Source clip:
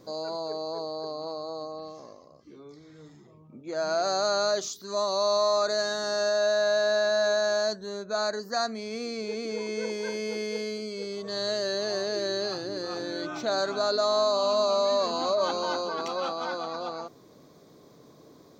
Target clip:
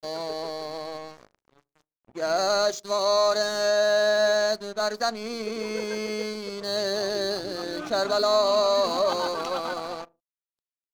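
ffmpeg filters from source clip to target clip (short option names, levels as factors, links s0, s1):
-filter_complex "[0:a]aeval=exprs='sgn(val(0))*max(abs(val(0))-0.00708,0)':c=same,asplit=2[s0][s1];[s1]adelay=66,lowpass=f=970:p=1,volume=0.112,asplit=2[s2][s3];[s3]adelay=66,lowpass=f=970:p=1,volume=0.52,asplit=2[s4][s5];[s5]adelay=66,lowpass=f=970:p=1,volume=0.52,asplit=2[s6][s7];[s7]adelay=66,lowpass=f=970:p=1,volume=0.52[s8];[s0][s2][s4][s6][s8]amix=inputs=5:normalize=0,atempo=1.7,volume=1.58"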